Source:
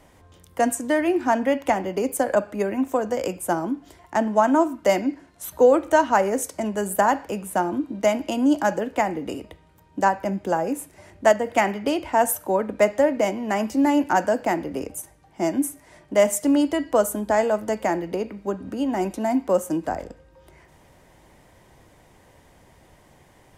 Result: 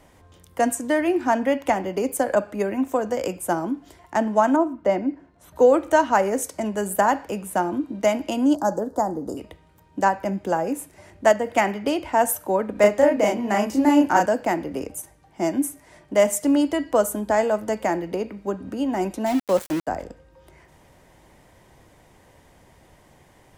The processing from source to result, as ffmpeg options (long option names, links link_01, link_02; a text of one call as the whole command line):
ffmpeg -i in.wav -filter_complex "[0:a]asettb=1/sr,asplit=3[link_01][link_02][link_03];[link_01]atrim=end=4.564[link_04];[link_02]atrim=start=4.56:end=5.56,asetpts=PTS-STARTPTS,afade=type=in:duration=0.004:curve=qsin,afade=type=out:start_time=0.996:duration=0.004:curve=qsin,lowpass=frequency=1000:poles=1[link_05];[link_03]atrim=start=5.556[link_06];[link_04][link_05]acrossfade=duration=0.004:curve1=hsin:curve2=qsin[link_07];[link_07][link_06]acrossfade=duration=0.004:curve1=qsin:curve2=hsin,asettb=1/sr,asplit=3[link_08][link_09][link_10];[link_08]atrim=end=8.554[link_11];[link_09]atrim=start=8.55:end=9.37,asetpts=PTS-STARTPTS,afade=type=in:duration=0.004:curve=qsin,afade=type=out:start_time=0.816:duration=0.004:curve=qsin,asuperstop=centerf=2500:order=4:qfactor=0.66[link_12];[link_10]atrim=start=9.366[link_13];[link_11][link_12]acrossfade=duration=0.004:curve1=hsin:curve2=qsin[link_14];[link_14][link_13]acrossfade=duration=0.004:curve1=qsin:curve2=hsin,asettb=1/sr,asplit=3[link_15][link_16][link_17];[link_15]atrim=end=12.724[link_18];[link_16]atrim=start=12.72:end=14.26,asetpts=PTS-STARTPTS,afade=type=in:duration=0.004:curve=qsin,afade=type=out:start_time=1.536:duration=0.004:curve=qsin,asplit=2[link_19][link_20];[link_20]adelay=34,volume=-2dB[link_21];[link_19][link_21]amix=inputs=2:normalize=0,atrim=end_sample=67914[link_22];[link_17]atrim=start=14.256[link_23];[link_18][link_22]acrossfade=duration=0.004:curve1=hsin:curve2=qsin[link_24];[link_24][link_23]acrossfade=duration=0.004:curve1=qsin:curve2=hsin,asettb=1/sr,asplit=3[link_25][link_26][link_27];[link_25]atrim=end=19.264[link_28];[link_26]atrim=start=19.26:end=19.87,asetpts=PTS-STARTPTS,afade=type=in:duration=0.004:curve=qsin,afade=type=out:start_time=0.606:duration=0.004:curve=qsin,aeval=exprs='val(0)*gte(abs(val(0)),0.0398)':channel_layout=same[link_29];[link_27]atrim=start=19.866[link_30];[link_28][link_29]acrossfade=duration=0.004:curve1=hsin:curve2=qsin[link_31];[link_31][link_30]acrossfade=duration=0.004:curve1=qsin:curve2=hsin" out.wav